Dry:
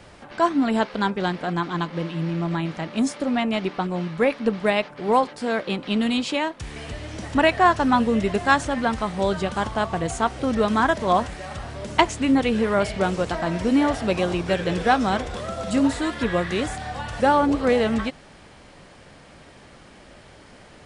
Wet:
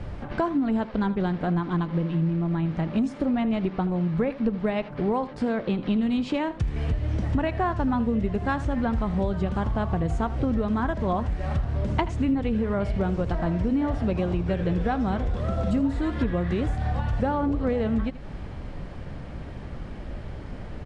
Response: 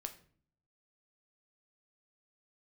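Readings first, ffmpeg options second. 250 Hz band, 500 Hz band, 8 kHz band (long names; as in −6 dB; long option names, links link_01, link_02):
−1.5 dB, −5.5 dB, below −15 dB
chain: -filter_complex "[0:a]aemphasis=mode=reproduction:type=riaa,acompressor=threshold=-25dB:ratio=6,asplit=2[link_01][link_02];[link_02]aecho=0:1:80:0.158[link_03];[link_01][link_03]amix=inputs=2:normalize=0,volume=2.5dB"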